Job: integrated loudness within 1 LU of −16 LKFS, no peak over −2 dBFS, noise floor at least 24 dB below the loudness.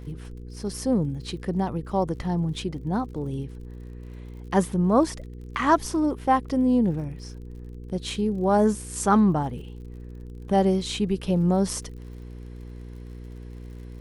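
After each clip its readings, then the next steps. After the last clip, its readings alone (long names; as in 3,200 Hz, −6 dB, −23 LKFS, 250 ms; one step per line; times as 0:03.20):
crackle rate 50 per second; mains hum 60 Hz; hum harmonics up to 480 Hz; level of the hum −37 dBFS; integrated loudness −25.0 LKFS; sample peak −6.5 dBFS; target loudness −16.0 LKFS
→ click removal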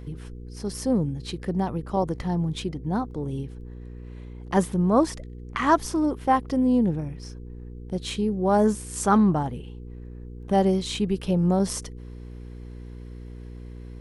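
crackle rate 0.29 per second; mains hum 60 Hz; hum harmonics up to 480 Hz; level of the hum −38 dBFS
→ hum removal 60 Hz, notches 8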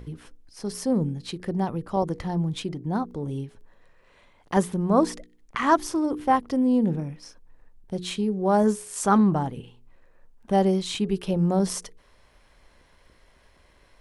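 mains hum none found; integrated loudness −25.0 LKFS; sample peak −6.0 dBFS; target loudness −16.0 LKFS
→ level +9 dB
brickwall limiter −2 dBFS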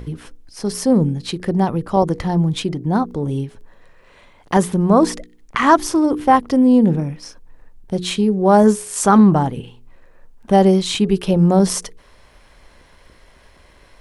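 integrated loudness −16.5 LKFS; sample peak −2.0 dBFS; background noise floor −50 dBFS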